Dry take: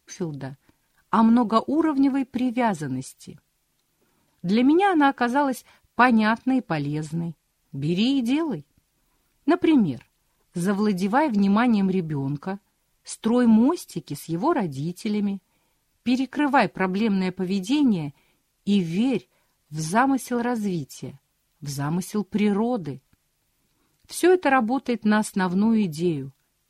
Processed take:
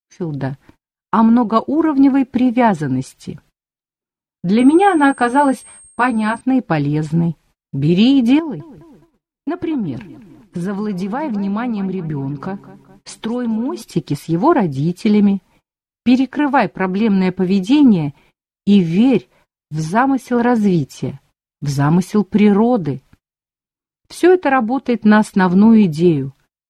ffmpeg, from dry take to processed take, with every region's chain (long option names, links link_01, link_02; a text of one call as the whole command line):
ffmpeg -i in.wav -filter_complex "[0:a]asettb=1/sr,asplit=3[link_01][link_02][link_03];[link_01]atrim=end=4.594[link_04];[link_02]atrim=start=4.59:end=6.41,asetpts=PTS-STARTPTS,afade=type=in:duration=0.004:curve=qsin,afade=type=out:start_time=1.816:duration=0.004:curve=qsin,aeval=exprs='val(0)+0.0316*sin(2*PI*8500*n/s)':channel_layout=same,asplit=2[link_05][link_06];[link_06]adelay=15,volume=-4dB[link_07];[link_05][link_07]amix=inputs=2:normalize=0,atrim=end_sample=80262[link_08];[link_03]atrim=start=6.406[link_09];[link_04][link_08]acrossfade=duration=0.004:curve1=hsin:curve2=qsin[link_10];[link_10][link_09]acrossfade=duration=0.004:curve1=qsin:curve2=hsin,asettb=1/sr,asplit=3[link_11][link_12][link_13];[link_11]atrim=end=8.394[link_14];[link_12]atrim=start=8.39:end=13.82,asetpts=PTS-STARTPTS,afade=type=in:duration=0.004:curve=qsin,afade=type=out:start_time=5.426:duration=0.004:curve=qsin,acompressor=threshold=-34dB:ratio=4:attack=3.2:release=140:knee=1:detection=peak,asplit=2[link_15][link_16];[link_16]adelay=210,lowpass=frequency=4400:poles=1,volume=-16dB,asplit=2[link_17][link_18];[link_18]adelay=210,lowpass=frequency=4400:poles=1,volume=0.52,asplit=2[link_19][link_20];[link_20]adelay=210,lowpass=frequency=4400:poles=1,volume=0.52,asplit=2[link_21][link_22];[link_22]adelay=210,lowpass=frequency=4400:poles=1,volume=0.52,asplit=2[link_23][link_24];[link_24]adelay=210,lowpass=frequency=4400:poles=1,volume=0.52[link_25];[link_15][link_17][link_19][link_21][link_23][link_25]amix=inputs=6:normalize=0,atrim=end_sample=239463[link_26];[link_13]atrim=start=13.816[link_27];[link_14][link_26]acrossfade=duration=0.004:curve1=hsin:curve2=qsin[link_28];[link_28][link_27]acrossfade=duration=0.004:curve1=qsin:curve2=hsin,dynaudnorm=framelen=120:gausssize=5:maxgain=13.5dB,lowpass=frequency=2500:poles=1,agate=range=-38dB:threshold=-45dB:ratio=16:detection=peak" out.wav